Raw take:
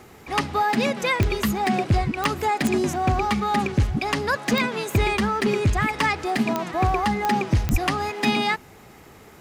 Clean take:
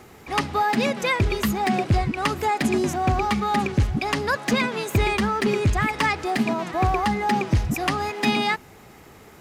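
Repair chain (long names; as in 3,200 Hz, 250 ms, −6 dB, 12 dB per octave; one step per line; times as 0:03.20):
click removal
0:07.71–0:07.83: high-pass filter 140 Hz 24 dB per octave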